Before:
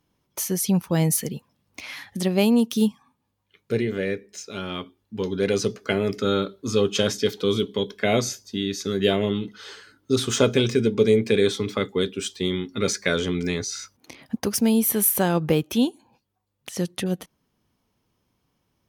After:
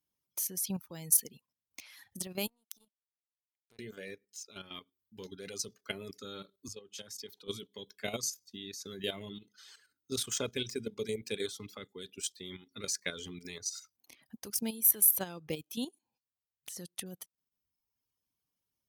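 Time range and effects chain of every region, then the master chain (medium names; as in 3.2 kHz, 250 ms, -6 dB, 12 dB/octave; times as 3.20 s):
2.47–3.79 s: compression 3:1, threshold -31 dBFS + power-law waveshaper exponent 2
6.68–7.48 s: compression 2.5:1, threshold -32 dBFS + three bands expanded up and down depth 100%
whole clip: pre-emphasis filter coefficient 0.8; reverb removal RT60 1.1 s; level held to a coarse grid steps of 11 dB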